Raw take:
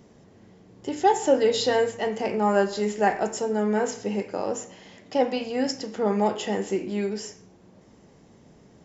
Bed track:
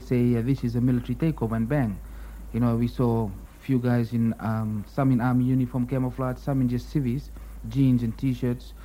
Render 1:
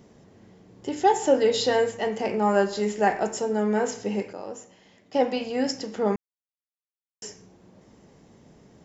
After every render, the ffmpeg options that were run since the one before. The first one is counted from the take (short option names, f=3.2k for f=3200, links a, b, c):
-filter_complex "[0:a]asplit=5[a][b][c][d][e];[a]atrim=end=4.332[f];[b]atrim=start=4.328:end=5.142,asetpts=PTS-STARTPTS,volume=-8.5dB[g];[c]atrim=start=5.138:end=6.16,asetpts=PTS-STARTPTS,afade=t=out:st=1.018:d=0.004:c=hsin[h];[d]atrim=start=6.16:end=7.22,asetpts=PTS-STARTPTS,volume=0[i];[e]atrim=start=7.22,asetpts=PTS-STARTPTS,afade=t=in:d=0.004:c=hsin[j];[f][g]acrossfade=d=0.004:c1=hsin:c2=hsin[k];[h][i][j]concat=n=3:v=0:a=1[l];[k][l]acrossfade=d=0.004:c1=hsin:c2=hsin"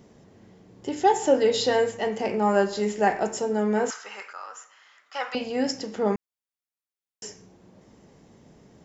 -filter_complex "[0:a]asettb=1/sr,asplit=3[a][b][c];[a]atrim=end=3.904[d];[b]atrim=start=3.9:end=5.35,asetpts=PTS-STARTPTS,afade=t=in:d=0.004:c=qsin,afade=t=out:st=1.446:d=0.004:c=qsin,highpass=f=1.3k:t=q:w=5.9[e];[c]atrim=start=5.346[f];[d][e]acrossfade=d=0.004:c1=hsin:c2=qsin[g];[g][f]acrossfade=d=0.004:c1=qsin:c2=hsin"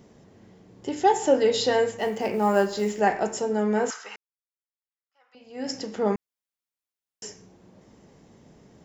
-filter_complex "[0:a]asettb=1/sr,asplit=3[a][b][c];[a]atrim=end=1.984[d];[b]atrim=start=1.98:end=3,asetpts=PTS-STARTPTS,afade=t=in:d=0.004:c=qsin,afade=t=out:st=1.016:d=0.004:c=qsin,acrusher=bits=8:mode=log:mix=0:aa=0.000001[e];[c]atrim=start=2.996[f];[d][e]acrossfade=d=0.004:c1=hsin:c2=qsin[g];[g][f]acrossfade=d=0.004:c1=qsin:c2=hsin,asplit=2[h][i];[h]atrim=end=4.16,asetpts=PTS-STARTPTS,afade=t=out:st=4.156:d=0.004:c=hsin[j];[i]atrim=start=4.16,asetpts=PTS-STARTPTS,afade=t=in:d=1.58:c=exp[k];[j][k]concat=n=2:v=0:a=1"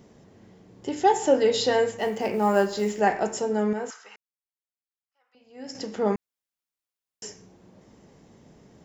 -filter_complex "[0:a]asplit=3[a][b][c];[a]atrim=end=3.732[d];[b]atrim=start=3.728:end=5.752,asetpts=PTS-STARTPTS,volume=-7.5dB[e];[c]atrim=start=5.748[f];[d][e]acrossfade=d=0.004:c1=hsin:c2=hsin[g];[g][f]acrossfade=d=0.004:c1=hsin:c2=hsin"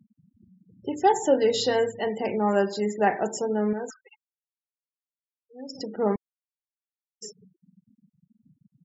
-af "afftfilt=real='re*gte(hypot(re,im),0.0178)':imag='im*gte(hypot(re,im),0.0178)':win_size=1024:overlap=0.75,adynamicequalizer=threshold=0.02:dfrequency=1100:dqfactor=0.78:tfrequency=1100:tqfactor=0.78:attack=5:release=100:ratio=0.375:range=2.5:mode=cutabove:tftype=bell"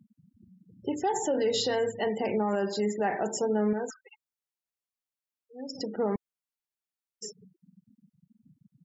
-af "alimiter=limit=-19.5dB:level=0:latency=1:release=51"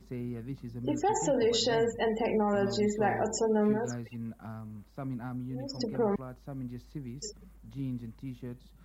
-filter_complex "[1:a]volume=-15.5dB[a];[0:a][a]amix=inputs=2:normalize=0"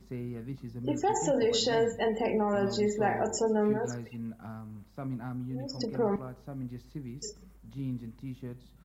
-filter_complex "[0:a]asplit=2[a][b];[b]adelay=31,volume=-13.5dB[c];[a][c]amix=inputs=2:normalize=0,asplit=2[d][e];[e]adelay=129,lowpass=f=3.3k:p=1,volume=-22dB,asplit=2[f][g];[g]adelay=129,lowpass=f=3.3k:p=1,volume=0.38,asplit=2[h][i];[i]adelay=129,lowpass=f=3.3k:p=1,volume=0.38[j];[d][f][h][j]amix=inputs=4:normalize=0"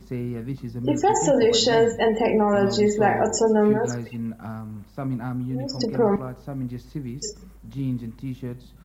-af "volume=8.5dB"